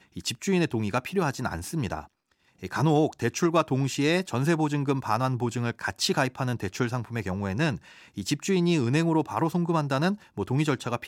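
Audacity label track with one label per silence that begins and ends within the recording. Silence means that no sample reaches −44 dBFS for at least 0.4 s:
2.060000	2.630000	silence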